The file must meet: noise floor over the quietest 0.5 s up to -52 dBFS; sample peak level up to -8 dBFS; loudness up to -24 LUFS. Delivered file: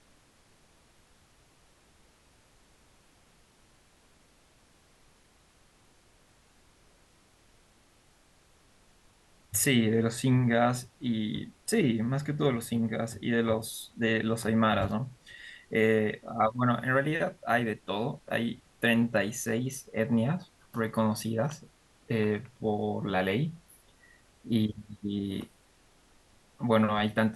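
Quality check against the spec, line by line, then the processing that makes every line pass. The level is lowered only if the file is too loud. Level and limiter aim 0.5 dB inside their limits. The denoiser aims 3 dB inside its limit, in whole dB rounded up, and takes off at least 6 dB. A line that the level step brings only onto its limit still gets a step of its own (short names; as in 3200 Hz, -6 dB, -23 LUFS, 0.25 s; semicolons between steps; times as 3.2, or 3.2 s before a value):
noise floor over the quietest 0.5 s -63 dBFS: OK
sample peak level -11.5 dBFS: OK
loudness -29.5 LUFS: OK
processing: none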